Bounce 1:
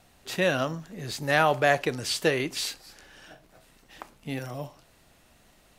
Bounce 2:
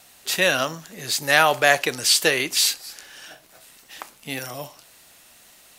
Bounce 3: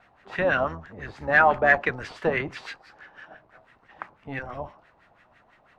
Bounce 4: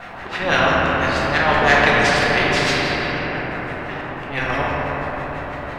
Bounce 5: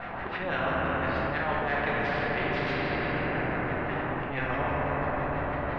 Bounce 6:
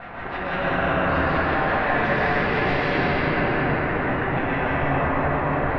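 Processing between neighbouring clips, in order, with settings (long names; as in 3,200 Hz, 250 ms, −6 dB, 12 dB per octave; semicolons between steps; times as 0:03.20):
spectral tilt +3 dB per octave; level +5 dB
sub-octave generator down 1 octave, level −1 dB; hard clipping −10.5 dBFS, distortion −15 dB; auto-filter low-pass sine 6 Hz 800–1,900 Hz; level −4 dB
volume swells 178 ms; convolution reverb RT60 3.3 s, pre-delay 6 ms, DRR −4.5 dB; every bin compressed towards the loudest bin 2 to 1; level +1 dB
reversed playback; downward compressor 6 to 1, threshold −24 dBFS, peak gain reduction 14 dB; reversed playback; high-frequency loss of the air 370 metres
dense smooth reverb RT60 3.2 s, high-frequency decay 0.65×, pre-delay 105 ms, DRR −6 dB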